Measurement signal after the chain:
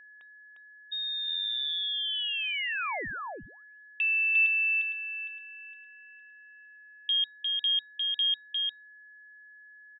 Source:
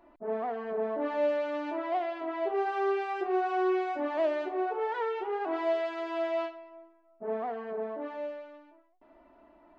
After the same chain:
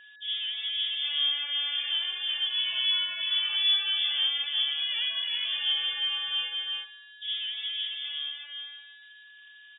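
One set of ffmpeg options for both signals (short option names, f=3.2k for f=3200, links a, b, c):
-af "aecho=1:1:353:0.668,lowpass=f=3.2k:t=q:w=0.5098,lowpass=f=3.2k:t=q:w=0.6013,lowpass=f=3.2k:t=q:w=0.9,lowpass=f=3.2k:t=q:w=2.563,afreqshift=-3800,aeval=exprs='val(0)+0.00316*sin(2*PI*1700*n/s)':c=same"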